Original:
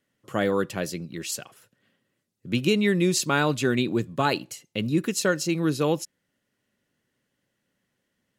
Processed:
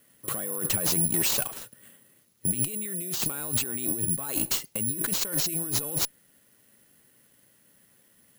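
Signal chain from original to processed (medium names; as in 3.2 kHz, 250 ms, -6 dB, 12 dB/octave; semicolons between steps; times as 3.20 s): compressor with a negative ratio -35 dBFS, ratio -1; valve stage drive 28 dB, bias 0.4; careless resampling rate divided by 4×, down none, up zero stuff; trim +2.5 dB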